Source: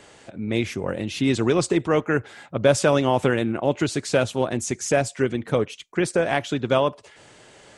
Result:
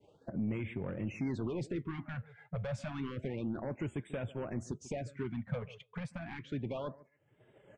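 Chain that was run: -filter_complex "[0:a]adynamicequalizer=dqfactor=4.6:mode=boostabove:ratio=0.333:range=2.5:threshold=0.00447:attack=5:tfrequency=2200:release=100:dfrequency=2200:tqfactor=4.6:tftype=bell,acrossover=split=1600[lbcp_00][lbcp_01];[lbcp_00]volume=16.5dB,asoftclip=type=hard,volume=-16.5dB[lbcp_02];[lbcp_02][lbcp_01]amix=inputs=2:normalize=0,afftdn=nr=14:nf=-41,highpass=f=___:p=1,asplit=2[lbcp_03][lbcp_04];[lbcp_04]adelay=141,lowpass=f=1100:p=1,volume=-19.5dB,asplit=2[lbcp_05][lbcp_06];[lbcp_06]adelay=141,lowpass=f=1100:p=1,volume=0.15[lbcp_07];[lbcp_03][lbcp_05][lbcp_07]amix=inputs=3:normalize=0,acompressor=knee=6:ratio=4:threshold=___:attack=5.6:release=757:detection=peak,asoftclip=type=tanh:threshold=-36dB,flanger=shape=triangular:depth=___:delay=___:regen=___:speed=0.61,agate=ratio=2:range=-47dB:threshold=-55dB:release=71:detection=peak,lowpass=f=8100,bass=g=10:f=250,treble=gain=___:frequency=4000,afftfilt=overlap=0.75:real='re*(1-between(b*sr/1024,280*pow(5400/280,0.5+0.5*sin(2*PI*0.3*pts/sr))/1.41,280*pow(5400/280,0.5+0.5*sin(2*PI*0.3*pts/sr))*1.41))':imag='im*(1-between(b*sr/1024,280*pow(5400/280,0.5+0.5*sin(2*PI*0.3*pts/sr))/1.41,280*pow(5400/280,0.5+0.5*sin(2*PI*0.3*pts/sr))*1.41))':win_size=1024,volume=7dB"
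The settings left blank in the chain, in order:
88, -39dB, 4.7, 2.8, -86, -11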